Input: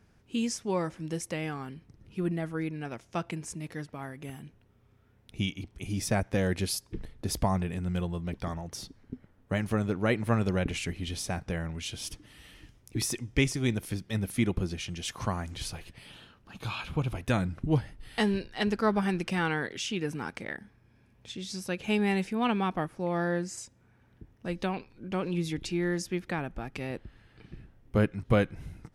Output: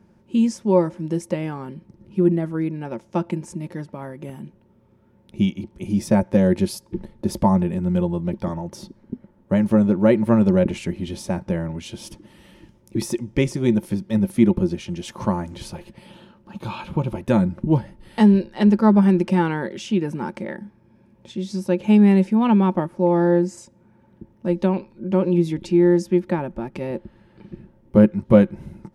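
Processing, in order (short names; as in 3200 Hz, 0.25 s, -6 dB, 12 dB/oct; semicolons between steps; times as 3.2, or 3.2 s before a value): small resonant body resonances 210/350/540/880 Hz, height 17 dB, ringing for 50 ms; gain -1.5 dB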